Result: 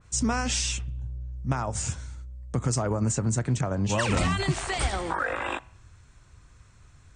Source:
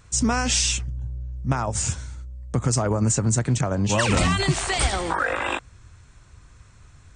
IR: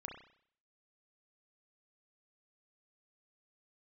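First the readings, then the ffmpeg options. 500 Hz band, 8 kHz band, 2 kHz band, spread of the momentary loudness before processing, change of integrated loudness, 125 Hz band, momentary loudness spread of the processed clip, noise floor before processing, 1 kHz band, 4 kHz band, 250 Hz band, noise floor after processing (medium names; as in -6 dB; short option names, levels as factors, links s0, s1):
-4.0 dB, -6.5 dB, -5.0 dB, 12 LU, -5.0 dB, -4.0 dB, 11 LU, -51 dBFS, -4.5 dB, -6.5 dB, -4.0 dB, -56 dBFS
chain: -filter_complex "[0:a]asplit=2[s0][s1];[1:a]atrim=start_sample=2205[s2];[s1][s2]afir=irnorm=-1:irlink=0,volume=0.188[s3];[s0][s3]amix=inputs=2:normalize=0,adynamicequalizer=threshold=0.0141:dfrequency=2600:dqfactor=0.7:tfrequency=2600:tqfactor=0.7:attack=5:release=100:ratio=0.375:range=2:mode=cutabove:tftype=highshelf,volume=0.562"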